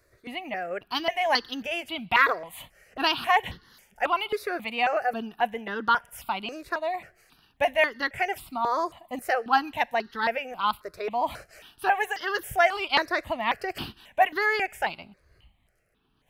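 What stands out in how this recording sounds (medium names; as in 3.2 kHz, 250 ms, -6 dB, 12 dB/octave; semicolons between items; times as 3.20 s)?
notches that jump at a steady rate 3.7 Hz 830–2400 Hz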